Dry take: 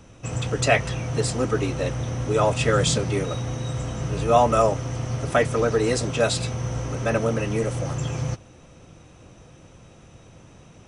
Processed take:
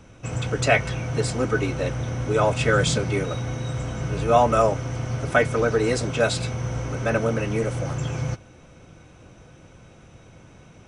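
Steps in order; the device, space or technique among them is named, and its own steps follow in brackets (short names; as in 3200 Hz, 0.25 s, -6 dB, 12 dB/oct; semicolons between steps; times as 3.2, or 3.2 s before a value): inside a helmet (high shelf 5700 Hz -4.5 dB; small resonant body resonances 1500/2200 Hz, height 13 dB, ringing for 85 ms)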